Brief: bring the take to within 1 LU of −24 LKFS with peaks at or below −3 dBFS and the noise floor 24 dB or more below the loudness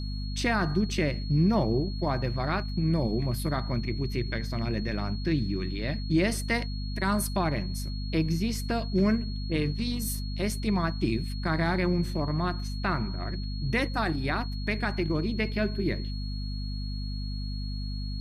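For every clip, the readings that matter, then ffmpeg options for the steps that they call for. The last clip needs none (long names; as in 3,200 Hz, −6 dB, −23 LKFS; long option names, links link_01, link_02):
mains hum 50 Hz; hum harmonics up to 250 Hz; level of the hum −30 dBFS; interfering tone 4,300 Hz; level of the tone −43 dBFS; integrated loudness −29.5 LKFS; sample peak −13.5 dBFS; target loudness −24.0 LKFS
→ -af "bandreject=frequency=50:width_type=h:width=6,bandreject=frequency=100:width_type=h:width=6,bandreject=frequency=150:width_type=h:width=6,bandreject=frequency=200:width_type=h:width=6,bandreject=frequency=250:width_type=h:width=6"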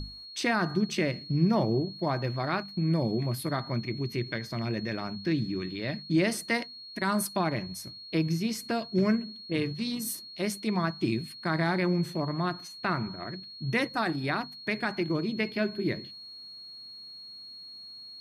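mains hum none found; interfering tone 4,300 Hz; level of the tone −43 dBFS
→ -af "bandreject=frequency=4300:width=30"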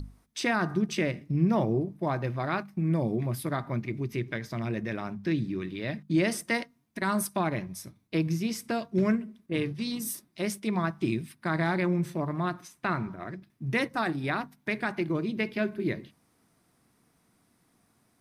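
interfering tone none found; integrated loudness −30.5 LKFS; sample peak −14.0 dBFS; target loudness −24.0 LKFS
→ -af "volume=6.5dB"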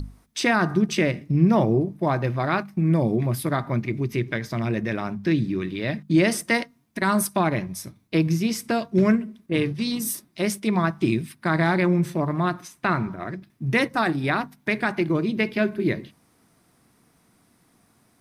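integrated loudness −24.0 LKFS; sample peak −7.5 dBFS; background noise floor −63 dBFS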